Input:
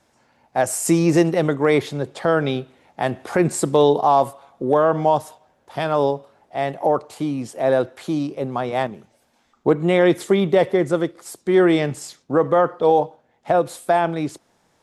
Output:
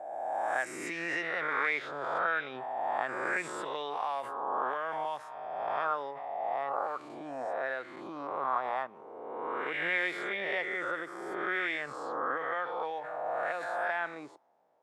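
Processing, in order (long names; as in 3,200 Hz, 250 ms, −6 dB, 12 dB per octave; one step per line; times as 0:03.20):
peak hold with a rise ahead of every peak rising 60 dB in 1.38 s
envelope filter 650–2,100 Hz, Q 2.8, up, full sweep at −10 dBFS
background raised ahead of every attack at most 32 dB per second
level −4.5 dB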